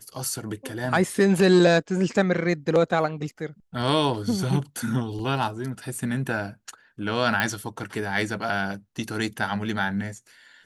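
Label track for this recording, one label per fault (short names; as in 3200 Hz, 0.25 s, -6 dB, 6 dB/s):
5.190000	5.190000	gap 3.5 ms
7.400000	7.400000	pop -9 dBFS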